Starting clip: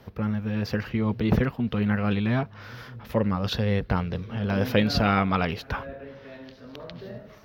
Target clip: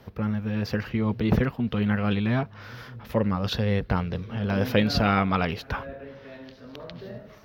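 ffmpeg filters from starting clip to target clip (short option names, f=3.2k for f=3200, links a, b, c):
-filter_complex "[0:a]asettb=1/sr,asplit=3[a][b][c];[a]atrim=end=1.734[d];[b]atrim=start=1.73:end=2.15,asetpts=PTS-STARTPTS,afade=t=in:d=0.004:c=qsin,afade=t=out:st=0.416:d=0.004:c=qsin,equalizer=f=3.2k:t=o:w=0.2:g=6.5[e];[c]atrim=start=2.146[f];[d][e]acrossfade=d=0.004:c1=hsin:c2=qsin[g];[g][f]acrossfade=d=0.004:c1=qsin:c2=hsin"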